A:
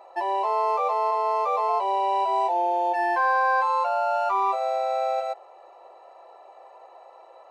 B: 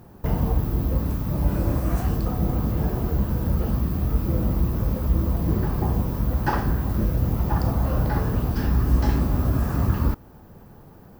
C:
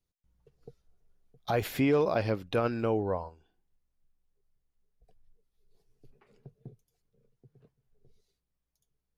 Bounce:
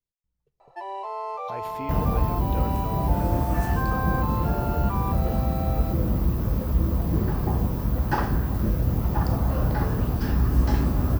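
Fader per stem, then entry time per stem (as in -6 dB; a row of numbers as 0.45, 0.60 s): -8.5, -1.0, -10.0 dB; 0.60, 1.65, 0.00 s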